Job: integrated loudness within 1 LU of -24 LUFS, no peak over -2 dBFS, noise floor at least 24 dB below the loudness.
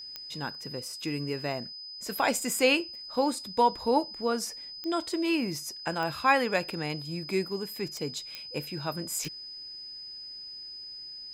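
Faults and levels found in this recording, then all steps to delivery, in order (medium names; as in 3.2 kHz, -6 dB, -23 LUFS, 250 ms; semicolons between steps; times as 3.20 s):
clicks found 6; steady tone 5 kHz; tone level -40 dBFS; loudness -30.5 LUFS; peak level -10.0 dBFS; loudness target -24.0 LUFS
-> de-click; band-stop 5 kHz, Q 30; trim +6.5 dB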